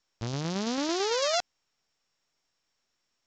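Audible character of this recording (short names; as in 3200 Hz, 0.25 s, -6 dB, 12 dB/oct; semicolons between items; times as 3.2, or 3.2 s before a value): a buzz of ramps at a fixed pitch in blocks of 8 samples; tremolo saw down 9 Hz, depth 35%; µ-law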